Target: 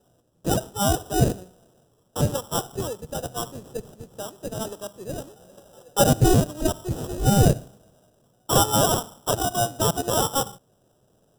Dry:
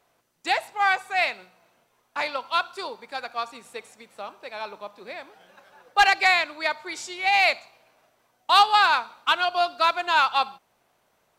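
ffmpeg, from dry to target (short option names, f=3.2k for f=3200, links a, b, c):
-filter_complex "[0:a]asplit=2[a][b];[b]alimiter=limit=-20.5dB:level=0:latency=1,volume=-3dB[c];[a][c]amix=inputs=2:normalize=0,acrusher=samples=20:mix=1:aa=0.000001,equalizer=f=125:t=o:w=1:g=9,equalizer=f=500:t=o:w=1:g=4,equalizer=f=1k:t=o:w=1:g=-9,equalizer=f=2k:t=o:w=1:g=-11,equalizer=f=4k:t=o:w=1:g=-4,equalizer=f=8k:t=o:w=1:g=4"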